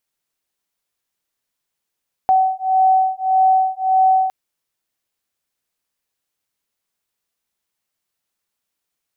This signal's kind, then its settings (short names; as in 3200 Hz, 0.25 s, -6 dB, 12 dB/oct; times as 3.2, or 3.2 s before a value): beating tones 756 Hz, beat 1.7 Hz, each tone -15.5 dBFS 2.01 s